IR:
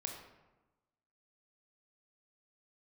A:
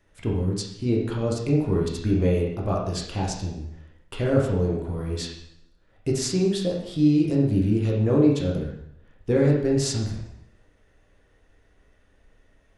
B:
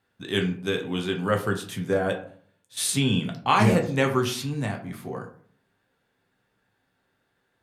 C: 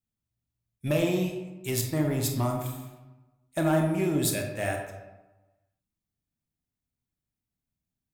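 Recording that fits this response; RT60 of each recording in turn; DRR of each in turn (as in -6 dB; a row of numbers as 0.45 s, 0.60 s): C; 0.75 s, 0.50 s, 1.1 s; -2.5 dB, 1.5 dB, 2.0 dB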